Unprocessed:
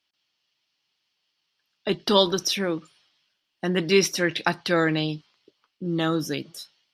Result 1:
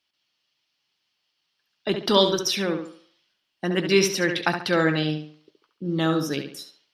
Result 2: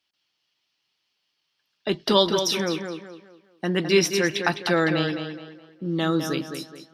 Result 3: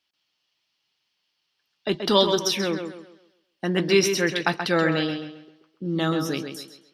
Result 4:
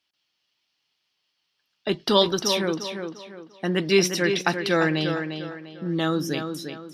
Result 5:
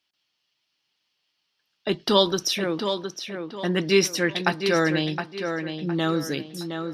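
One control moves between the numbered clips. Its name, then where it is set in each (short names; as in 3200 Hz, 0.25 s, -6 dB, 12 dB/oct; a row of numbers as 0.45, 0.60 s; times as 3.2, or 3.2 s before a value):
tape echo, time: 70, 209, 132, 348, 714 ms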